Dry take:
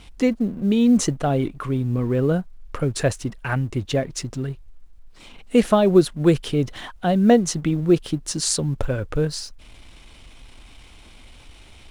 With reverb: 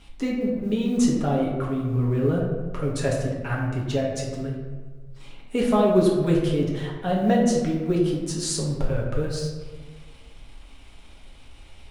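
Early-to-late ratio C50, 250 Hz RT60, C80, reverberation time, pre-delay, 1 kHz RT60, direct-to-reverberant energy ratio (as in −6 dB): 2.5 dB, 1.5 s, 4.5 dB, 1.5 s, 4 ms, 1.3 s, −3.5 dB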